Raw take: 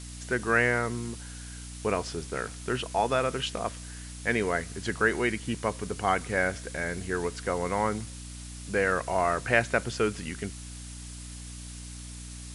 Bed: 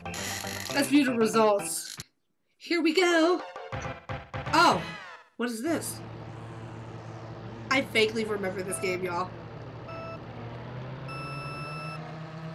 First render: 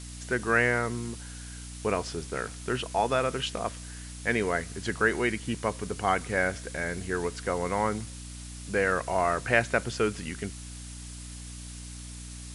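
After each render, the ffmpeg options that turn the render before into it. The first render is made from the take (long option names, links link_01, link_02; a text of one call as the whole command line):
ffmpeg -i in.wav -af anull out.wav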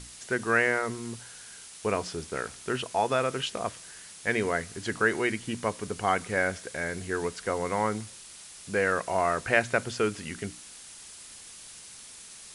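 ffmpeg -i in.wav -af "bandreject=frequency=60:width_type=h:width=6,bandreject=frequency=120:width_type=h:width=6,bandreject=frequency=180:width_type=h:width=6,bandreject=frequency=240:width_type=h:width=6,bandreject=frequency=300:width_type=h:width=6" out.wav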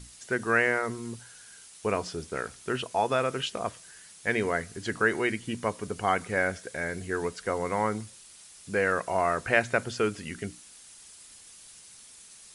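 ffmpeg -i in.wav -af "afftdn=noise_reduction=6:noise_floor=-47" out.wav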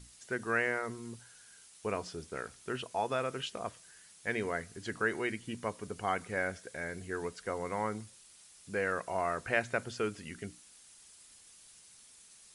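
ffmpeg -i in.wav -af "volume=-7dB" out.wav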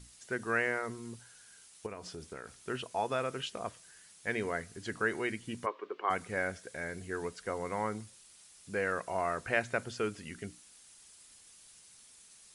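ffmpeg -i in.wav -filter_complex "[0:a]asettb=1/sr,asplit=3[link_01][link_02][link_03];[link_01]atrim=end=1.864[link_04];[link_02]atrim=start=1.86:end=2.63,asetpts=PTS-STARTPTS,afade=type=in:duration=0.004:curve=qsin,afade=type=out:start_time=0.766:duration=0.004:curve=qsin,acompressor=threshold=-39dB:ratio=6:attack=3.2:release=140:knee=1:detection=peak[link_05];[link_03]atrim=start=2.626[link_06];[link_04][link_05]acrossfade=duration=0.004:curve1=hsin:curve2=qsin[link_07];[link_07][link_06]acrossfade=duration=0.004:curve1=qsin:curve2=hsin,asplit=3[link_08][link_09][link_10];[link_08]afade=type=out:start_time=5.65:duration=0.02[link_11];[link_09]highpass=frequency=360:width=0.5412,highpass=frequency=360:width=1.3066,equalizer=frequency=360:width_type=q:width=4:gain=8,equalizer=frequency=700:width_type=q:width=4:gain=-5,equalizer=frequency=1100:width_type=q:width=4:gain=8,lowpass=frequency=3300:width=0.5412,lowpass=frequency=3300:width=1.3066,afade=type=in:start_time=5.65:duration=0.02,afade=type=out:start_time=6.09:duration=0.02[link_12];[link_10]afade=type=in:start_time=6.09:duration=0.02[link_13];[link_11][link_12][link_13]amix=inputs=3:normalize=0" out.wav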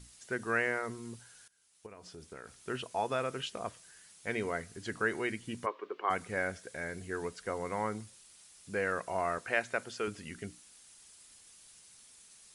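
ffmpeg -i in.wav -filter_complex "[0:a]asettb=1/sr,asplit=3[link_01][link_02][link_03];[link_01]atrim=end=4.184[link_04];[link_02]atrim=start=4.18:end=4.63,asetpts=PTS-STARTPTS,afade=type=in:duration=0.004:curve=qsin,afade=type=out:start_time=0.446:duration=0.004:curve=qsin,bandreject=frequency=1700:width=12[link_05];[link_03]atrim=start=4.626[link_06];[link_04][link_05]acrossfade=duration=0.004:curve1=hsin:curve2=qsin[link_07];[link_07][link_06]acrossfade=duration=0.004:curve1=qsin:curve2=hsin,asettb=1/sr,asplit=3[link_08][link_09][link_10];[link_08]atrim=end=9.384[link_11];[link_09]atrim=start=9.38:end=10.08,asetpts=PTS-STARTPTS,afade=type=in:duration=0.004:curve=qsin,afade=type=out:start_time=0.696:duration=0.004:curve=qsin,highpass=frequency=350:poles=1[link_12];[link_10]atrim=start=10.076[link_13];[link_11][link_12]acrossfade=duration=0.004:curve1=hsin:curve2=qsin[link_14];[link_14][link_13]acrossfade=duration=0.004:curve1=qsin:curve2=hsin,asplit=2[link_15][link_16];[link_15]atrim=end=1.48,asetpts=PTS-STARTPTS,afade=type=out:start_time=1.476:duration=0.004:curve=hsin:silence=0.112202[link_17];[link_16]atrim=start=1.48,asetpts=PTS-STARTPTS,afade=type=in:duration=1.28:silence=0.112202[link_18];[link_17][link_18]concat=n=2:v=0:a=1" out.wav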